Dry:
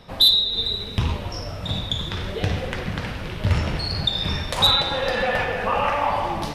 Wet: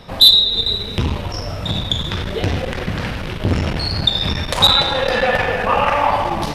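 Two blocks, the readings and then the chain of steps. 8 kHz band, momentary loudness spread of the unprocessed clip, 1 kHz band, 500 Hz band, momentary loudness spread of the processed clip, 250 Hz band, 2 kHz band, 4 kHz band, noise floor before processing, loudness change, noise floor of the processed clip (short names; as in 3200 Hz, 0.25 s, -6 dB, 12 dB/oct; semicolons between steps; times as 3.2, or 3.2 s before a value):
+6.0 dB, 12 LU, +5.5 dB, +6.0 dB, 12 LU, +6.0 dB, +5.5 dB, +6.0 dB, -33 dBFS, +5.5 dB, -27 dBFS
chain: core saturation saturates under 350 Hz; gain +7 dB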